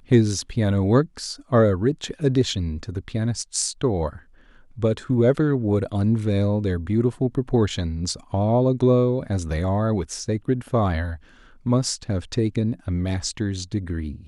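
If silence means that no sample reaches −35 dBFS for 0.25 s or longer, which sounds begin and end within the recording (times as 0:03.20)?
0:04.78–0:11.16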